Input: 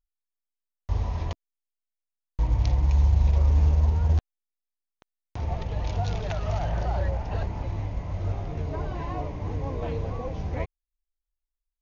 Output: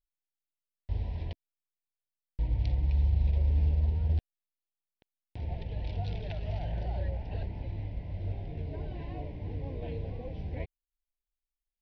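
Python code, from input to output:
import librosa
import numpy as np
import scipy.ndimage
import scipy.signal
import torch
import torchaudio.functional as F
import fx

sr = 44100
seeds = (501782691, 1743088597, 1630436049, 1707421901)

y = fx.fixed_phaser(x, sr, hz=2900.0, stages=4)
y = y * 10.0 ** (-6.0 / 20.0)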